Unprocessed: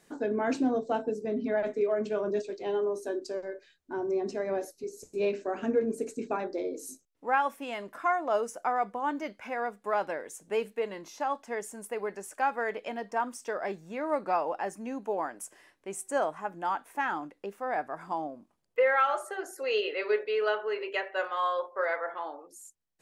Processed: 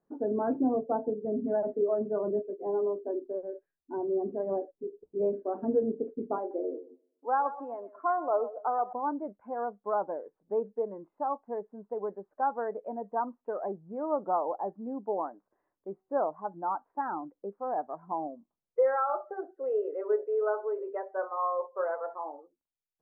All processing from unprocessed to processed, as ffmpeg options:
ffmpeg -i in.wav -filter_complex "[0:a]asettb=1/sr,asplit=3[link_01][link_02][link_03];[link_01]atrim=end=6.384[link_04];[link_02]atrim=start=6.38:end=8.93,asetpts=PTS-STARTPTS,afade=type=in:duration=0.004:curve=qsin,afade=type=out:start_time=2.546:duration=0.004:curve=qsin,highpass=frequency=270:width=0.5412,highpass=frequency=270:width=1.3066,aecho=1:1:126|252|378|504:0.211|0.0803|0.0305|0.0116,atrim=end_sample=112455[link_05];[link_03]atrim=start=8.926[link_06];[link_04][link_05]acrossfade=duration=0.004:curve1=hsin:curve2=qsin[link_07];[link_07][link_06]acrossfade=duration=0.004:curve1=qsin:curve2=hsin,lowpass=frequency=1200:width=0.5412,lowpass=frequency=1200:width=1.3066,afftdn=noise_reduction=14:noise_floor=-38" out.wav

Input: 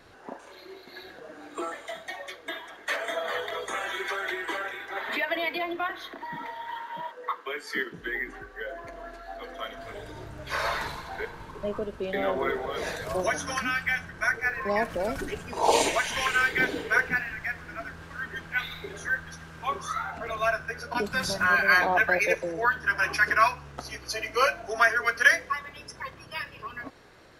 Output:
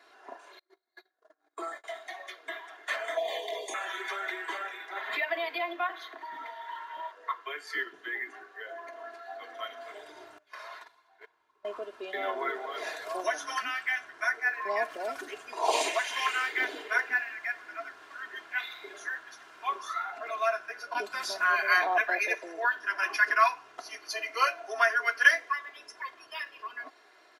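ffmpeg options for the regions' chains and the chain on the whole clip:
ffmpeg -i in.wav -filter_complex "[0:a]asettb=1/sr,asplit=3[link_01][link_02][link_03];[link_01]atrim=end=0.594[link_04];[link_02]atrim=start=0.59:end=1.84,asetpts=PTS-STARTPTS,afade=type=in:duration=0.004:curve=qsin,afade=type=out:start_time=1.246:duration=0.004:curve=qsin,agate=range=-33dB:threshold=-42dB:ratio=16:release=100:detection=peak,equalizer=frequency=2700:width_type=o:width=0.42:gain=-12[link_05];[link_03]atrim=start=1.836[link_06];[link_04][link_05]acrossfade=duration=0.004:curve1=hsin:curve2=qsin[link_07];[link_07][link_06]acrossfade=duration=0.004:curve1=qsin:curve2=hsin,asettb=1/sr,asplit=3[link_08][link_09][link_10];[link_08]atrim=end=3.174[link_11];[link_09]atrim=start=3.17:end=3.74,asetpts=PTS-STARTPTS,afade=type=in:duration=0.004:curve=qsin,afade=type=out:start_time=0.566:duration=0.004:curve=qsin,acontrast=32,asuperstop=centerf=1400:order=4:qfactor=0.87[link_12];[link_10]atrim=start=3.736[link_13];[link_11][link_12]acrossfade=duration=0.004:curve1=hsin:curve2=qsin[link_14];[link_14][link_13]acrossfade=duration=0.004:curve1=qsin:curve2=hsin,asettb=1/sr,asplit=3[link_15][link_16][link_17];[link_15]atrim=end=10.384[link_18];[link_16]atrim=start=10.38:end=11.65,asetpts=PTS-STARTPTS,afade=type=in:duration=0.004:curve=qsin,afade=type=out:start_time=1.266:duration=0.004:curve=qsin,agate=range=-23dB:threshold=-31dB:ratio=16:release=100:detection=peak,asubboost=boost=5.5:cutoff=160,acompressor=threshold=-38dB:ratio=6:attack=3.2:release=140:knee=1:detection=peak[link_19];[link_17]atrim=start=11.646[link_20];[link_18][link_19]acrossfade=duration=0.004:curve1=hsin:curve2=qsin[link_21];[link_21][link_20]acrossfade=duration=0.004:curve1=qsin:curve2=hsin,highpass=580,highshelf=frequency=6900:gain=-6.5,aecho=1:1:2.9:0.64,volume=-3.5dB" out.wav

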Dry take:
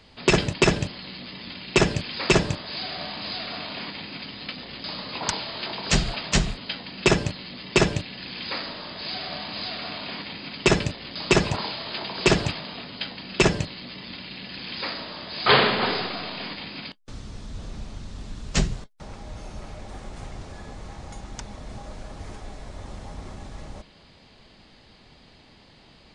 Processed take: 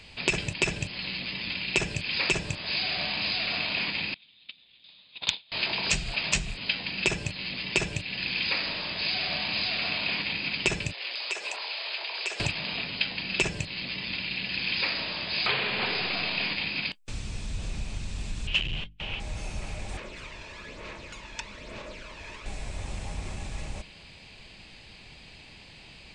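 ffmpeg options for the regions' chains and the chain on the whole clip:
ffmpeg -i in.wav -filter_complex "[0:a]asettb=1/sr,asplit=3[link_01][link_02][link_03];[link_01]atrim=end=4.144[link_04];[link_02]atrim=start=4.14:end=5.52,asetpts=PTS-STARTPTS,afade=type=in:duration=0.004:curve=qsin,afade=type=out:start_time=1.376:duration=0.004:curve=qsin,agate=range=-34dB:threshold=-29dB:ratio=16:release=100:detection=peak,lowpass=frequency=3600:width_type=q:width=8.2[link_05];[link_03]atrim=start=5.516[link_06];[link_04][link_05]acrossfade=duration=0.004:curve1=hsin:curve2=qsin[link_07];[link_07][link_06]acrossfade=duration=0.004:curve1=qsin:curve2=hsin,asettb=1/sr,asplit=3[link_08][link_09][link_10];[link_08]atrim=end=10.934[link_11];[link_09]atrim=start=10.93:end=12.4,asetpts=PTS-STARTPTS,afade=type=in:duration=0.004:curve=qsin,afade=type=out:start_time=1.466:duration=0.004:curve=qsin,highpass=frequency=450:width=0.5412,highpass=frequency=450:width=1.3066,acompressor=threshold=-35dB:ratio=8:attack=3.2:release=140:knee=1:detection=peak[link_12];[link_10]atrim=start=12.396[link_13];[link_11][link_12]acrossfade=duration=0.004:curve1=hsin:curve2=qsin[link_14];[link_14][link_13]acrossfade=duration=0.004:curve1=qsin:curve2=hsin,asettb=1/sr,asplit=3[link_15][link_16][link_17];[link_15]atrim=end=18.474[link_18];[link_16]atrim=start=18.47:end=19.2,asetpts=PTS-STARTPTS,afade=type=in:duration=0.004:curve=qsin,afade=type=out:start_time=0.726:duration=0.004:curve=qsin,bandreject=frequency=50:width_type=h:width=6,bandreject=frequency=100:width_type=h:width=6,bandreject=frequency=150:width_type=h:width=6,bandreject=frequency=200:width_type=h:width=6,bandreject=frequency=250:width_type=h:width=6,bandreject=frequency=300:width_type=h:width=6,volume=29.5dB,asoftclip=hard,volume=-29.5dB,lowpass=frequency=3000:width_type=q:width=9.6[link_19];[link_17]atrim=start=19.196[link_20];[link_18][link_19]acrossfade=duration=0.004:curve1=hsin:curve2=qsin[link_21];[link_21][link_20]acrossfade=duration=0.004:curve1=qsin:curve2=hsin,asettb=1/sr,asplit=3[link_22][link_23][link_24];[link_22]atrim=end=19.974[link_25];[link_23]atrim=start=19.97:end=22.46,asetpts=PTS-STARTPTS,afade=type=in:duration=0.004:curve=qsin,afade=type=out:start_time=2.486:duration=0.004:curve=qsin,asuperstop=centerf=770:order=4:qfactor=4.1,acrossover=split=270 5200:gain=0.126 1 0.112[link_26][link_27][link_28];[link_26][link_27][link_28]amix=inputs=3:normalize=0,aphaser=in_gain=1:out_gain=1:delay=1.2:decay=0.46:speed=1.1:type=sinusoidal[link_29];[link_24]atrim=start=22.456[link_30];[link_25][link_29]acrossfade=duration=0.004:curve1=hsin:curve2=qsin[link_31];[link_31][link_30]acrossfade=duration=0.004:curve1=qsin:curve2=hsin,equalizer=frequency=480:width=0.39:gain=-5,acompressor=threshold=-30dB:ratio=12,equalizer=frequency=250:width_type=o:width=0.33:gain=-4,equalizer=frequency=1250:width_type=o:width=0.33:gain=-4,equalizer=frequency=2500:width_type=o:width=0.33:gain=10,equalizer=frequency=8000:width_type=o:width=0.33:gain=7,volume=4dB" out.wav

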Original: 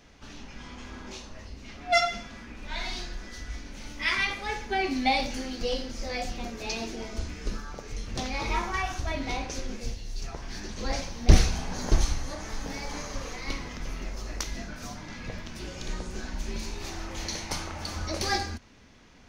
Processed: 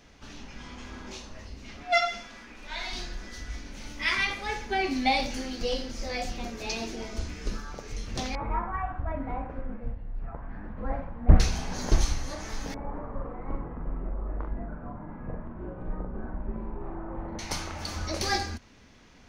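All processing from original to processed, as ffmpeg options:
ffmpeg -i in.wav -filter_complex "[0:a]asettb=1/sr,asplit=3[link_01][link_02][link_03];[link_01]atrim=end=1.834[link_04];[link_02]atrim=start=1.83:end=2.93,asetpts=PTS-STARTPTS,afade=type=in:duration=0.004:curve=qsin,afade=type=out:start_time=1.096:duration=0.004:curve=qsin,acrossover=split=5100[link_05][link_06];[link_06]acompressor=threshold=-47dB:ratio=4:attack=1:release=60[link_07];[link_05][link_07]amix=inputs=2:normalize=0,equalizer=frequency=82:width_type=o:width=2.9:gain=-12.5[link_08];[link_03]atrim=start=2.926[link_09];[link_04][link_08]acrossfade=duration=0.004:curve1=hsin:curve2=qsin[link_10];[link_10][link_09]acrossfade=duration=0.004:curve1=qsin:curve2=hsin,asettb=1/sr,asplit=3[link_11][link_12][link_13];[link_11]atrim=end=8.354[link_14];[link_12]atrim=start=8.35:end=11.4,asetpts=PTS-STARTPTS,afade=type=in:duration=0.004:curve=qsin,afade=type=out:start_time=3.046:duration=0.004:curve=qsin,lowpass=frequency=1500:width=0.5412,lowpass=frequency=1500:width=1.3066,equalizer=frequency=380:width_type=o:width=0.22:gain=-13.5[link_15];[link_13]atrim=start=11.396[link_16];[link_14][link_15]acrossfade=duration=0.004:curve1=hsin:curve2=qsin[link_17];[link_17][link_16]acrossfade=duration=0.004:curve1=qsin:curve2=hsin,asettb=1/sr,asplit=3[link_18][link_19][link_20];[link_18]atrim=end=12.744[link_21];[link_19]atrim=start=12.74:end=17.39,asetpts=PTS-STARTPTS,afade=type=in:duration=0.004:curve=qsin,afade=type=out:start_time=4.646:duration=0.004:curve=qsin,lowpass=frequency=1200:width=0.5412,lowpass=frequency=1200:width=1.3066,asplit=2[link_22][link_23];[link_23]adelay=42,volume=-3.5dB[link_24];[link_22][link_24]amix=inputs=2:normalize=0,atrim=end_sample=205065[link_25];[link_20]atrim=start=17.386[link_26];[link_21][link_25]acrossfade=duration=0.004:curve1=hsin:curve2=qsin[link_27];[link_27][link_26]acrossfade=duration=0.004:curve1=qsin:curve2=hsin" out.wav

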